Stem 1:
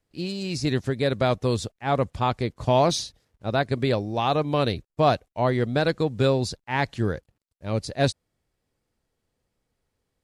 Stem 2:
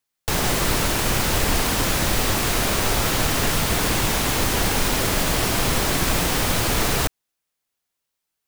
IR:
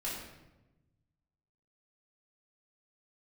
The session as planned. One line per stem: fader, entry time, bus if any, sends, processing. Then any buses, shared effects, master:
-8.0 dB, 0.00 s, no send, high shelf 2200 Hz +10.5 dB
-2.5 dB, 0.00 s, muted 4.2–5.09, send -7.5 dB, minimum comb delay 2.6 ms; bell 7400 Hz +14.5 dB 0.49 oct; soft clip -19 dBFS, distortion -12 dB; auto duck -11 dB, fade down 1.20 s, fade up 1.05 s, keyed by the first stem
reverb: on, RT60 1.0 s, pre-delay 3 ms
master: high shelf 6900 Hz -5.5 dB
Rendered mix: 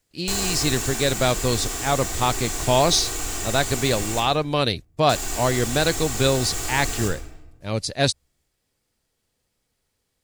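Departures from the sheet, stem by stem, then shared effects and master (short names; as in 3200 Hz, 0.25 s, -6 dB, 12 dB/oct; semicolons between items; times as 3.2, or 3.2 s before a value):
stem 1 -8.0 dB -> 0.0 dB; master: missing high shelf 6900 Hz -5.5 dB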